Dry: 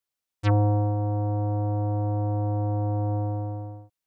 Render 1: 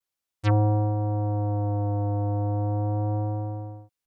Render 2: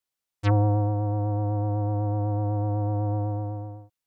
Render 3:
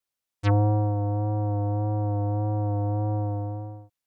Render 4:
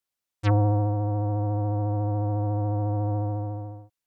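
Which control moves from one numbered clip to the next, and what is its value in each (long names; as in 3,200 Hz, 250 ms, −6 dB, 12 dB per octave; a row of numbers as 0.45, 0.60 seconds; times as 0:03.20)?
pitch vibrato, speed: 0.36, 8, 1.7, 14 Hertz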